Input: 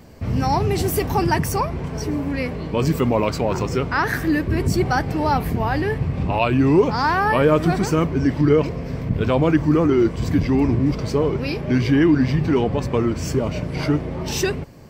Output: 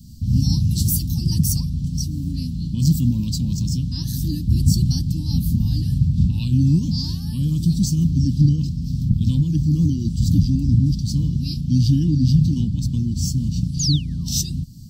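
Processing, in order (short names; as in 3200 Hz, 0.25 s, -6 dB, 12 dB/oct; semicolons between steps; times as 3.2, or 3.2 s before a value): painted sound fall, 13.79–14.52, 310–7200 Hz -27 dBFS; inverse Chebyshev band-stop 390–2300 Hz, stop band 40 dB; noise-modulated level, depth 60%; gain +8 dB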